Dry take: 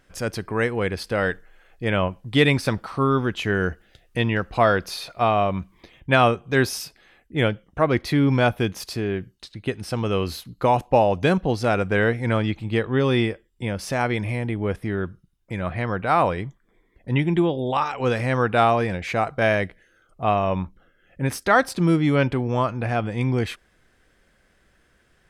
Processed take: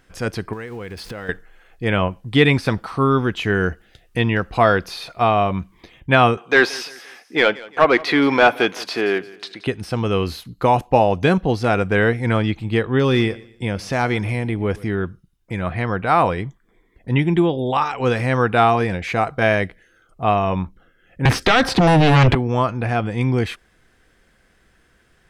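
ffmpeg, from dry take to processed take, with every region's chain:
ffmpeg -i in.wav -filter_complex "[0:a]asettb=1/sr,asplit=3[link_01][link_02][link_03];[link_01]atrim=end=0.534[link_04];[link_02]atrim=start=0.53:end=1.29,asetpts=PTS-STARTPTS,afade=type=in:duration=0.004:curve=qsin,afade=type=out:start_time=0.756:duration=0.004:curve=qsin,aeval=exprs='val(0)+0.5*0.0126*sgn(val(0))':channel_layout=same,acompressor=threshold=-31dB:ratio=10:attack=3.2:release=140:knee=1:detection=peak[link_05];[link_03]atrim=start=1.286[link_06];[link_04][link_05]acrossfade=duration=0.004:curve1=hsin:curve2=qsin[link_07];[link_07][link_06]acrossfade=duration=0.004:curve1=qsin:curve2=hsin,asettb=1/sr,asplit=3[link_08][link_09][link_10];[link_08]atrim=end=6.374[link_11];[link_09]atrim=start=6.37:end=9.67,asetpts=PTS-STARTPTS,afade=type=in:duration=0.004:curve=qsin,afade=type=out:start_time=3.296:duration=0.004:curve=qsin,highpass=280,asplit=2[link_12][link_13];[link_13]highpass=frequency=720:poles=1,volume=16dB,asoftclip=type=tanh:threshold=-5dB[link_14];[link_12][link_14]amix=inputs=2:normalize=0,lowpass=frequency=3600:poles=1,volume=-6dB,aecho=1:1:173|346|519:0.0891|0.0365|0.015,atrim=end_sample=145530[link_15];[link_10]atrim=start=9.666[link_16];[link_11][link_15]acrossfade=duration=0.004:curve1=hsin:curve2=qsin[link_17];[link_17][link_16]acrossfade=duration=0.004:curve1=qsin:curve2=hsin,asettb=1/sr,asplit=3[link_18][link_19][link_20];[link_18]atrim=end=12.994[link_21];[link_19]atrim=start=12.99:end=14.95,asetpts=PTS-STARTPTS,afade=type=in:duration=0.004:curve=qsin,afade=type=out:start_time=1.956:duration=0.004:curve=qsin,equalizer=frequency=5800:width=1.4:gain=3.5,volume=13dB,asoftclip=hard,volume=-13dB,aecho=1:1:120|240|360:0.0891|0.0312|0.0109,atrim=end_sample=86436[link_22];[link_20]atrim=start=14.946[link_23];[link_21][link_22]acrossfade=duration=0.004:curve1=hsin:curve2=qsin[link_24];[link_24][link_23]acrossfade=duration=0.004:curve1=qsin:curve2=hsin,asettb=1/sr,asplit=3[link_25][link_26][link_27];[link_25]atrim=end=21.254[link_28];[link_26]atrim=start=21.25:end=22.35,asetpts=PTS-STARTPTS,afade=type=in:duration=0.004:curve=qsin,afade=type=out:start_time=1.096:duration=0.004:curve=qsin,acrossover=split=170|3000[link_29][link_30][link_31];[link_30]acompressor=threshold=-24dB:ratio=5:attack=3.2:release=140:knee=2.83:detection=peak[link_32];[link_29][link_32][link_31]amix=inputs=3:normalize=0,aeval=exprs='0.251*sin(PI/2*3.55*val(0)/0.251)':channel_layout=same[link_33];[link_27]atrim=start=22.346[link_34];[link_28][link_33]acrossfade=duration=0.004:curve1=hsin:curve2=qsin[link_35];[link_35][link_34]acrossfade=duration=0.004:curve1=qsin:curve2=hsin,acrossover=split=4400[link_36][link_37];[link_37]acompressor=threshold=-42dB:ratio=4:attack=1:release=60[link_38];[link_36][link_38]amix=inputs=2:normalize=0,bandreject=frequency=580:width=12,volume=3.5dB" out.wav

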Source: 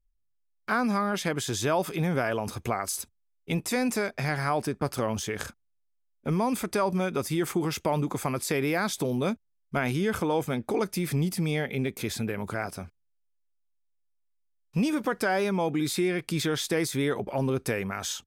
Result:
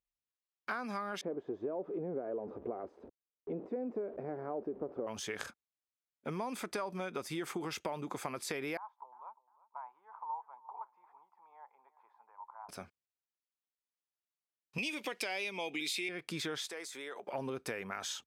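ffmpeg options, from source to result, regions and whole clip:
ffmpeg -i in.wav -filter_complex "[0:a]asettb=1/sr,asplit=3[link_01][link_02][link_03];[link_01]atrim=end=1.214[link_04];[link_02]atrim=start=1.21:end=5.07,asetpts=PTS-STARTPTS,afade=type=in:duration=0.004:curve=qsin,afade=type=out:start_time=3.856:duration=0.004:curve=qsin,aeval=exprs='val(0)+0.5*0.0237*sgn(val(0))':channel_layout=same,lowpass=frequency=430:width_type=q:width=1.8,equalizer=frequency=120:width_type=o:width=1.2:gain=-11[link_05];[link_03]atrim=start=5.066[link_06];[link_04][link_05]acrossfade=duration=0.004:curve1=hsin:curve2=qsin[link_07];[link_07][link_06]acrossfade=duration=0.004:curve1=qsin:curve2=hsin,asettb=1/sr,asplit=3[link_08][link_09][link_10];[link_08]atrim=end=8.774[link_11];[link_09]atrim=start=8.77:end=12.69,asetpts=PTS-STARTPTS,afade=type=in:duration=0.004:curve=qsin,afade=type=out:start_time=3.916:duration=0.004:curve=qsin,asuperpass=centerf=940:order=4:qfactor=4.6,aecho=1:1:351|702:0.112|0.0314,atrim=end_sample=172872[link_12];[link_10]atrim=start=12.686[link_13];[link_11][link_12]acrossfade=duration=0.004:curve1=hsin:curve2=qsin[link_14];[link_14][link_13]acrossfade=duration=0.004:curve1=qsin:curve2=hsin,asettb=1/sr,asplit=3[link_15][link_16][link_17];[link_15]atrim=end=14.784[link_18];[link_16]atrim=start=14.78:end=16.09,asetpts=PTS-STARTPTS,afade=type=in:duration=0.004:curve=qsin,afade=type=out:start_time=1.306:duration=0.004:curve=qsin,highpass=230,highshelf=frequency=1900:width_type=q:width=3:gain=8.5[link_19];[link_17]atrim=start=16.086[link_20];[link_18][link_19]acrossfade=duration=0.004:curve1=hsin:curve2=qsin[link_21];[link_21][link_20]acrossfade=duration=0.004:curve1=qsin:curve2=hsin,asettb=1/sr,asplit=3[link_22][link_23][link_24];[link_22]atrim=end=16.684[link_25];[link_23]atrim=start=16.68:end=17.28,asetpts=PTS-STARTPTS,afade=type=in:duration=0.004:curve=qsin,afade=type=out:start_time=0.596:duration=0.004:curve=qsin,highpass=450,equalizer=frequency=7400:width_type=o:width=0.5:gain=6.5,acompressor=threshold=-39dB:ratio=2.5:attack=3.2:release=140:knee=1:detection=peak[link_26];[link_24]atrim=start=17.276[link_27];[link_25][link_26]acrossfade=duration=0.004:curve1=hsin:curve2=qsin[link_28];[link_28][link_27]acrossfade=duration=0.004:curve1=qsin:curve2=hsin,highpass=frequency=490:poles=1,highshelf=frequency=8100:gain=-12,acompressor=threshold=-32dB:ratio=6,volume=-2.5dB" out.wav

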